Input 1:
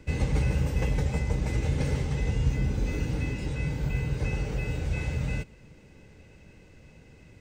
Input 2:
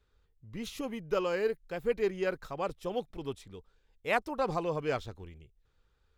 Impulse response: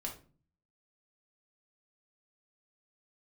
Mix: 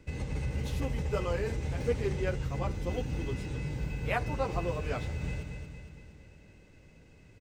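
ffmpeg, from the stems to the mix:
-filter_complex "[0:a]alimiter=limit=-21dB:level=0:latency=1:release=121,volume=-5.5dB,asplit=2[a][b];[b]volume=-6dB[c];[1:a]asplit=2[d][e];[e]adelay=10.3,afreqshift=-0.53[f];[d][f]amix=inputs=2:normalize=1,volume=-1.5dB,asplit=2[g][h];[h]volume=-14.5dB[i];[2:a]atrim=start_sample=2205[j];[i][j]afir=irnorm=-1:irlink=0[k];[c]aecho=0:1:231|462|693|924|1155|1386|1617|1848:1|0.53|0.281|0.149|0.0789|0.0418|0.0222|0.0117[l];[a][g][k][l]amix=inputs=4:normalize=0"

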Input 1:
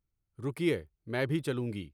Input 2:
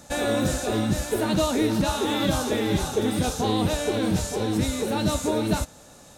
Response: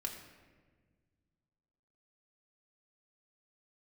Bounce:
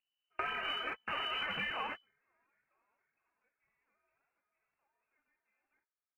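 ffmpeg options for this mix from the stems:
-filter_complex "[0:a]highpass=71,aeval=exprs='abs(val(0))':c=same,volume=-2.5dB,asplit=2[a][b];[1:a]highpass=920,equalizer=f=2.1k:t=o:w=2.1:g=13.5,adelay=200,volume=-4.5dB[c];[b]apad=whole_len=280968[d];[c][d]sidechaingate=range=-51dB:threshold=-52dB:ratio=16:detection=peak[e];[a][e]amix=inputs=2:normalize=0,lowpass=f=2.6k:t=q:w=0.5098,lowpass=f=2.6k:t=q:w=0.6013,lowpass=f=2.6k:t=q:w=0.9,lowpass=f=2.6k:t=q:w=2.563,afreqshift=-3000,aphaser=in_gain=1:out_gain=1:delay=5:decay=0.39:speed=1.9:type=triangular,acompressor=threshold=-34dB:ratio=12"

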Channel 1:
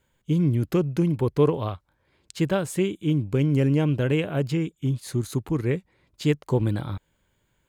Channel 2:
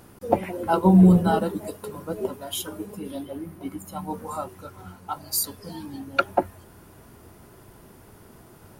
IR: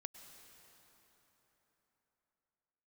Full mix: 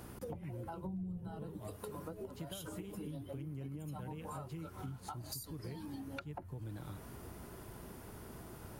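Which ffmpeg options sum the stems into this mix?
-filter_complex "[0:a]aecho=1:1:6.7:0.32,volume=-12.5dB[a];[1:a]volume=-1.5dB[b];[a][b]amix=inputs=2:normalize=0,acrossover=split=140[c][d];[d]acompressor=threshold=-36dB:ratio=6[e];[c][e]amix=inputs=2:normalize=0,aeval=exprs='val(0)+0.00141*(sin(2*PI*60*n/s)+sin(2*PI*2*60*n/s)/2+sin(2*PI*3*60*n/s)/3+sin(2*PI*4*60*n/s)/4+sin(2*PI*5*60*n/s)/5)':c=same,acompressor=threshold=-42dB:ratio=5"

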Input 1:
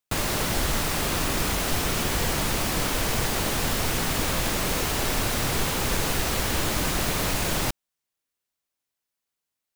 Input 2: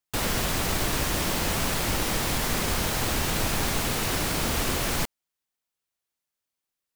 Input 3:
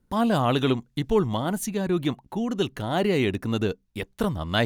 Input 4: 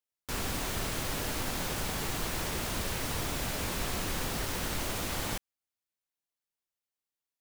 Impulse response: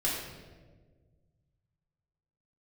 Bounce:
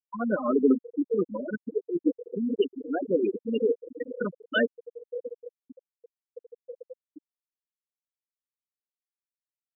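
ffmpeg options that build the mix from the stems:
-filter_complex "[0:a]highshelf=f=3.9k:g=-9,alimiter=level_in=0.5dB:limit=-24dB:level=0:latency=1:release=11,volume=-0.5dB,asplit=2[a][b];[b]adelay=6.6,afreqshift=0.67[c];[a][c]amix=inputs=2:normalize=1,adelay=350,volume=-1.5dB,asplit=2[d][e];[e]volume=-11dB[f];[1:a]lowpass=1.3k,equalizer=f=590:w=0.51:g=6,adelay=1900,volume=-15dB[g];[2:a]asplit=2[h][i];[i]adelay=3.8,afreqshift=1[j];[h][j]amix=inputs=2:normalize=1,volume=0dB,asplit=2[k][l];[3:a]volume=0dB,asplit=2[m][n];[n]volume=-22dB[o];[l]apad=whole_len=445906[p];[d][p]sidechaincompress=threshold=-29dB:ratio=8:attack=11:release=204[q];[4:a]atrim=start_sample=2205[r];[f][o]amix=inputs=2:normalize=0[s];[s][r]afir=irnorm=-1:irlink=0[t];[q][g][k][m][t]amix=inputs=5:normalize=0,highpass=260,equalizer=f=270:t=q:w=4:g=8,equalizer=f=480:t=q:w=4:g=9,equalizer=f=730:t=q:w=4:g=-5,equalizer=f=1.5k:t=q:w=4:g=7,equalizer=f=2.8k:t=q:w=4:g=5,equalizer=f=5.4k:t=q:w=4:g=-7,lowpass=f=8.5k:w=0.5412,lowpass=f=8.5k:w=1.3066,afftfilt=real='re*gte(hypot(re,im),0.224)':imag='im*gte(hypot(re,im),0.224)':win_size=1024:overlap=0.75"

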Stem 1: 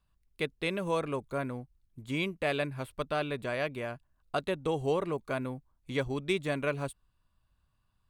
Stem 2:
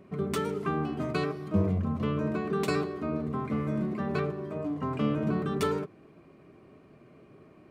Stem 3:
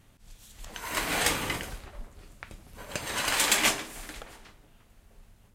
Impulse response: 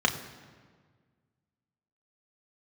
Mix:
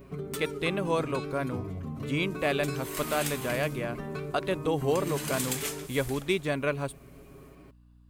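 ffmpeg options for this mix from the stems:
-filter_complex "[0:a]aeval=exprs='val(0)+0.00126*(sin(2*PI*60*n/s)+sin(2*PI*2*60*n/s)/2+sin(2*PI*3*60*n/s)/3+sin(2*PI*4*60*n/s)/4+sin(2*PI*5*60*n/s)/5)':c=same,volume=2.5dB[a];[1:a]aecho=1:1:7.3:0.97,acompressor=threshold=-30dB:ratio=2,volume=-0.5dB[b];[2:a]adelay=2000,volume=-6.5dB[c];[b][c]amix=inputs=2:normalize=0,aemphasis=mode=production:type=50kf,acompressor=threshold=-37dB:ratio=2,volume=0dB[d];[a][d]amix=inputs=2:normalize=0"

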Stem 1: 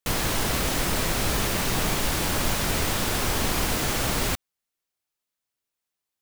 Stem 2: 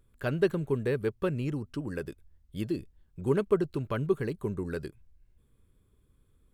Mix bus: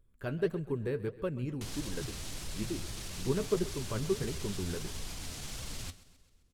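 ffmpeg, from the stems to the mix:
-filter_complex "[0:a]lowpass=9.8k,alimiter=limit=-18dB:level=0:latency=1:release=24,acrossover=split=180|3000[a][b][c];[b]acompressor=threshold=-43dB:ratio=3[d];[a][d][c]amix=inputs=3:normalize=0,adelay=1550,volume=-7dB,asplit=2[e][f];[f]volume=-17.5dB[g];[1:a]lowshelf=f=380:g=4.5,volume=-3.5dB,asplit=2[h][i];[i]volume=-18dB[j];[g][j]amix=inputs=2:normalize=0,aecho=0:1:131|262|393|524|655|786|917|1048:1|0.55|0.303|0.166|0.0915|0.0503|0.0277|0.0152[k];[e][h][k]amix=inputs=3:normalize=0,flanger=delay=1.8:depth=9.7:regen=55:speed=1.6:shape=sinusoidal"

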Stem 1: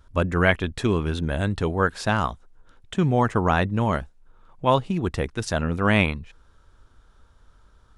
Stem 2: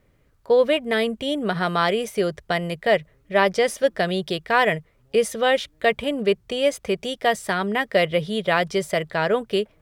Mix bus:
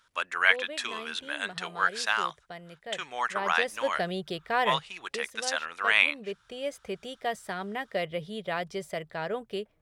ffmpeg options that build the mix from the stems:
-filter_complex "[0:a]highpass=1.4k,equalizer=f=2.6k:w=0.31:g=5,volume=-2dB[a];[1:a]equalizer=f=760:w=7.2:g=4,volume=-2.5dB,afade=t=in:st=3.26:d=0.71:silence=0.266073,afade=t=out:st=4.89:d=0.28:silence=0.334965,afade=t=in:st=6.11:d=0.78:silence=0.473151[b];[a][b]amix=inputs=2:normalize=0"

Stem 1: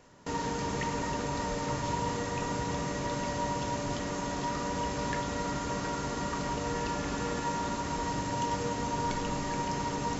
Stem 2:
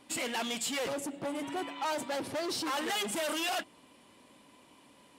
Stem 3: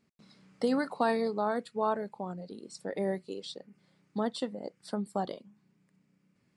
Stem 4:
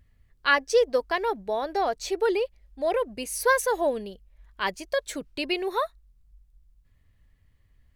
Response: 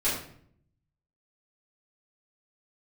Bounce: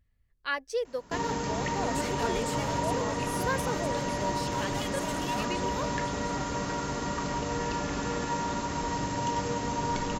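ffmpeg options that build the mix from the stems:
-filter_complex "[0:a]adelay=850,volume=1.5dB[a];[1:a]acompressor=threshold=-35dB:ratio=6,adelay=1850,volume=-2.5dB[b];[2:a]adelay=1200,volume=-9dB[c];[3:a]volume=-10dB[d];[a][b][c][d]amix=inputs=4:normalize=0"

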